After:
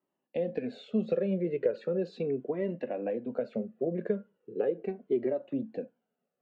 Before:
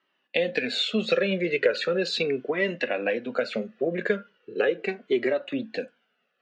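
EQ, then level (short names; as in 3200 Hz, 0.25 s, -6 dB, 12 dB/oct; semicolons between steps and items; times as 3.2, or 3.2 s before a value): EQ curve 140 Hz 0 dB, 900 Hz -8 dB, 1400 Hz -20 dB, 3900 Hz -26 dB; 0.0 dB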